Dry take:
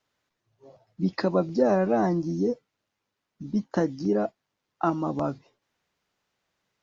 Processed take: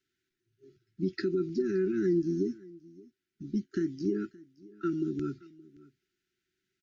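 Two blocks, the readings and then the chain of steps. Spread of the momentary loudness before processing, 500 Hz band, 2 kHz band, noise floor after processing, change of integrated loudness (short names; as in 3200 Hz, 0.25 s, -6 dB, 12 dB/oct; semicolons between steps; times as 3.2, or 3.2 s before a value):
9 LU, -6.5 dB, -7.0 dB, under -85 dBFS, -5.5 dB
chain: bell 370 Hz +13 dB 0.3 oct; limiter -14 dBFS, peak gain reduction 7.5 dB; brick-wall FIR band-stop 410–1300 Hz; on a send: echo 0.572 s -22.5 dB; on the sum: gain -5.5 dB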